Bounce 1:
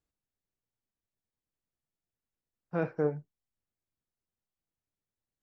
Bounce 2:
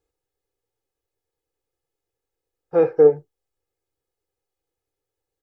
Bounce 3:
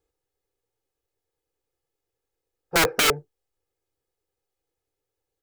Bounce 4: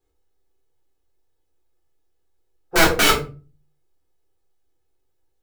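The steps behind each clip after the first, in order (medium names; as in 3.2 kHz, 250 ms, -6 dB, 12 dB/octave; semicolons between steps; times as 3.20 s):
peaking EQ 510 Hz +11.5 dB 1.1 oct; comb 2.4 ms, depth 79%; trim +3 dB
integer overflow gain 13.5 dB
simulated room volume 170 m³, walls furnished, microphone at 3.5 m; trim -3 dB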